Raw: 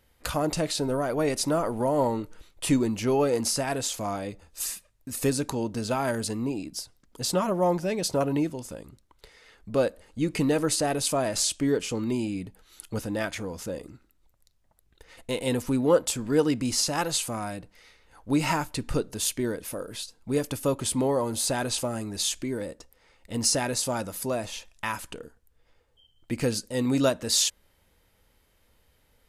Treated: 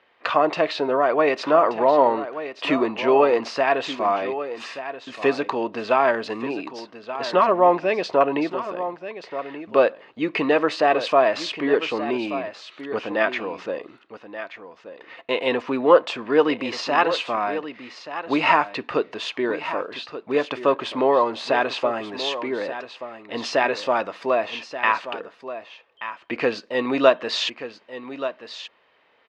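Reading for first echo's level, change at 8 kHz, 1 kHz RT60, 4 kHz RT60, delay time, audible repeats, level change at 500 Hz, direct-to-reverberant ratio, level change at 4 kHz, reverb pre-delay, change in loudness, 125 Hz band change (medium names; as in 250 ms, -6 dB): -12.0 dB, under -15 dB, no reverb, no reverb, 1180 ms, 1, +7.5 dB, no reverb, +2.0 dB, no reverb, +5.0 dB, -10.5 dB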